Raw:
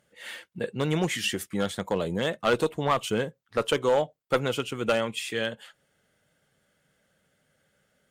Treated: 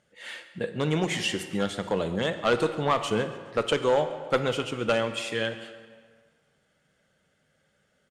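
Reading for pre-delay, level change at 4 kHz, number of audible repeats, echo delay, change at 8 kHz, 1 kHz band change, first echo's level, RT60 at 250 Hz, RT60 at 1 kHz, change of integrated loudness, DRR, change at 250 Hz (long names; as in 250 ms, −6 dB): 21 ms, +0.5 dB, 3, 139 ms, −2.0 dB, +0.5 dB, −19.0 dB, 1.6 s, 1.7 s, +0.5 dB, 9.0 dB, +0.5 dB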